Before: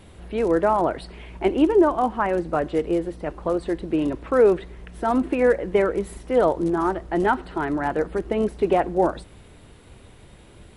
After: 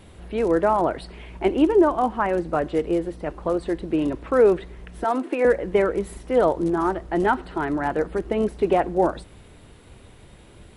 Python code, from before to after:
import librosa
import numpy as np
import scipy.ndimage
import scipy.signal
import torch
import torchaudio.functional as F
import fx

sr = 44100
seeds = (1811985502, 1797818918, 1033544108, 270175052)

y = fx.highpass(x, sr, hz=290.0, slope=24, at=(5.04, 5.45))